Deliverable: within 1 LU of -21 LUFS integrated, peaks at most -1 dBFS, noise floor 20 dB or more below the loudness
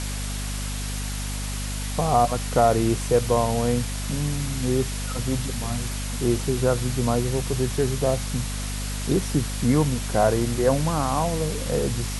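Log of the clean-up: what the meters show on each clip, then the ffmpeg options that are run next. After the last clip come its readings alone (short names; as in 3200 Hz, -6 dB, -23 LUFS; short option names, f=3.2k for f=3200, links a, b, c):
hum 50 Hz; harmonics up to 250 Hz; hum level -27 dBFS; noise floor -29 dBFS; noise floor target -45 dBFS; loudness -24.5 LUFS; peak -6.5 dBFS; loudness target -21.0 LUFS
-> -af "bandreject=f=50:t=h:w=4,bandreject=f=100:t=h:w=4,bandreject=f=150:t=h:w=4,bandreject=f=200:t=h:w=4,bandreject=f=250:t=h:w=4"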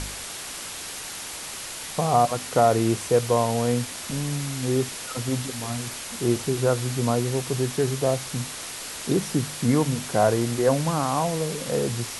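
hum none; noise floor -36 dBFS; noise floor target -45 dBFS
-> -af "afftdn=nr=9:nf=-36"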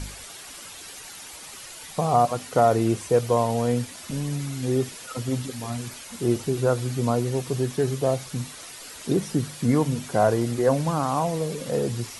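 noise floor -42 dBFS; noise floor target -45 dBFS
-> -af "afftdn=nr=6:nf=-42"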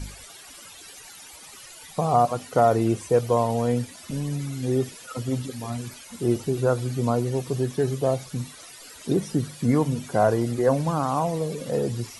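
noise floor -45 dBFS; loudness -25.0 LUFS; peak -6.5 dBFS; loudness target -21.0 LUFS
-> -af "volume=4dB"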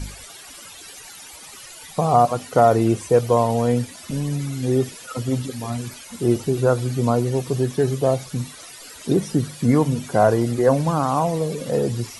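loudness -21.0 LUFS; peak -2.5 dBFS; noise floor -41 dBFS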